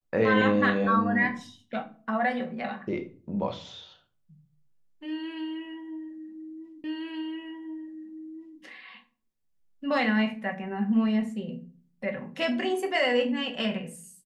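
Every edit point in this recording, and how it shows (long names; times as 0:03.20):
0:06.84: the same again, the last 1.77 s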